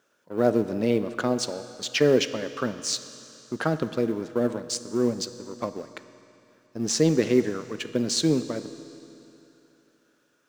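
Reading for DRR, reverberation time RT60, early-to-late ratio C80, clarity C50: 11.5 dB, 2.9 s, 13.0 dB, 12.5 dB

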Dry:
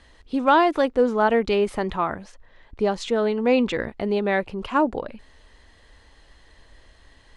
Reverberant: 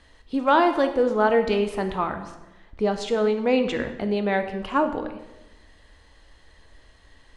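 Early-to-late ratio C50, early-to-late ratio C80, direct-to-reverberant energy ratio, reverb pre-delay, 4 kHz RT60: 10.0 dB, 12.0 dB, 6.5 dB, 4 ms, 0.80 s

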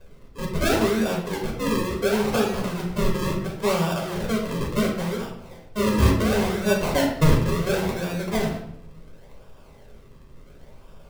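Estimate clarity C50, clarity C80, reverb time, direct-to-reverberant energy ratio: 5.0 dB, 8.0 dB, 0.80 s, -2.0 dB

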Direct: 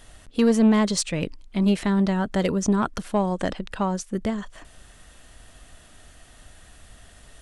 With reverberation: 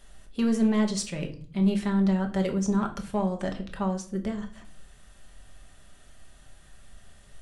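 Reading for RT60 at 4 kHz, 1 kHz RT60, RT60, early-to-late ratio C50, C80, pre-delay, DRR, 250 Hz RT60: 0.35 s, 0.45 s, 0.50 s, 12.5 dB, 17.0 dB, 5 ms, 3.0 dB, 1.1 s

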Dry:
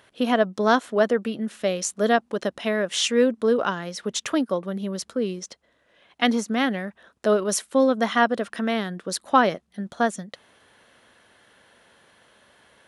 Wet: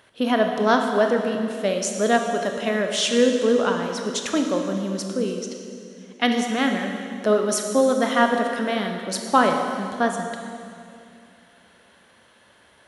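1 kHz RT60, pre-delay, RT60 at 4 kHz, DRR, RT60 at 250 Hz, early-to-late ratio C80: 2.3 s, 21 ms, 2.3 s, 3.5 dB, 2.8 s, 5.5 dB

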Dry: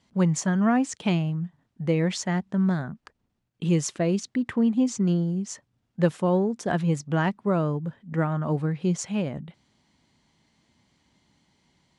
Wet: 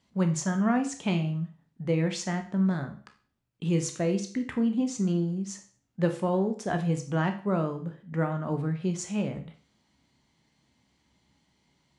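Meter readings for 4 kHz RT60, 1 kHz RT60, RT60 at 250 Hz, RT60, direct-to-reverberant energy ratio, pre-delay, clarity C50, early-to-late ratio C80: 0.40 s, 0.45 s, 0.40 s, 0.45 s, 5.5 dB, 14 ms, 11.5 dB, 16.0 dB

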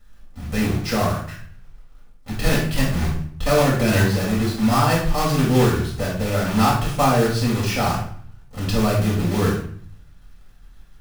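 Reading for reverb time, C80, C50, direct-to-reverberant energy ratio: 0.55 s, 8.5 dB, 3.5 dB, -5.5 dB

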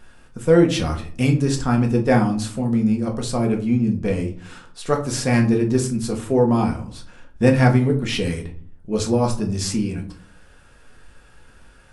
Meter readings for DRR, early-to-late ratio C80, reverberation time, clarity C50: 1.5 dB, 16.0 dB, 0.50 s, 11.5 dB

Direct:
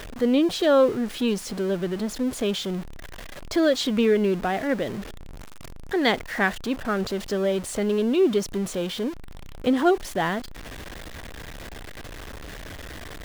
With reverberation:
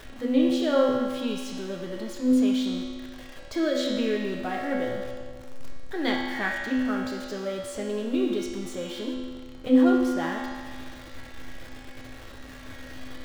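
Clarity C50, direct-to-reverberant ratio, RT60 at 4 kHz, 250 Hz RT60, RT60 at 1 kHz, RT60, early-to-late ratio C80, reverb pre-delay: 0.5 dB, -3.0 dB, 1.6 s, 1.7 s, 1.7 s, 1.7 s, 2.5 dB, 4 ms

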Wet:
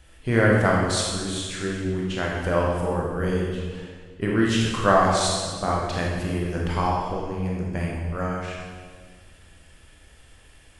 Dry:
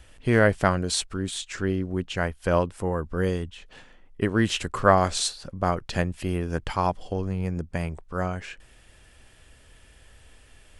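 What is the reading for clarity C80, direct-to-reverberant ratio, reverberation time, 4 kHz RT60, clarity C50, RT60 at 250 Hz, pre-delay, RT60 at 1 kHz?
2.0 dB, -3.5 dB, 1.6 s, 1.4 s, 0.0 dB, 2.0 s, 18 ms, 1.5 s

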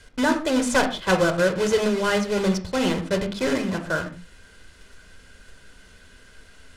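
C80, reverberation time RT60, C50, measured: 15.0 dB, not exponential, 11.5 dB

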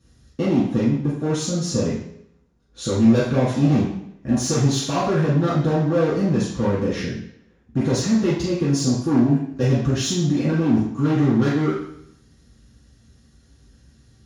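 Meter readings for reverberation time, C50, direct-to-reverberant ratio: 0.70 s, 2.0 dB, -9.5 dB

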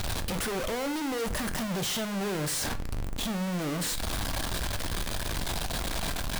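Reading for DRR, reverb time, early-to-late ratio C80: 8.5 dB, 0.45 s, 20.5 dB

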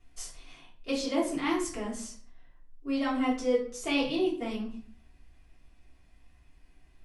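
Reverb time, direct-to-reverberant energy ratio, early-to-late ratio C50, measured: 0.50 s, -7.5 dB, 7.0 dB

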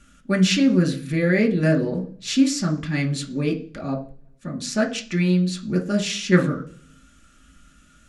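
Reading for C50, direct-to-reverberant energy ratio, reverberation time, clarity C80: 13.5 dB, 0.0 dB, 0.45 s, 18.5 dB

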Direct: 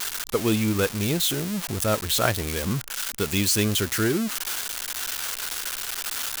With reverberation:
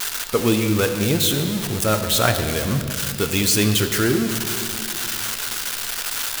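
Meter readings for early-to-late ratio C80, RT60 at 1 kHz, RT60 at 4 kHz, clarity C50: 8.5 dB, 2.0 s, 2.1 s, 8.0 dB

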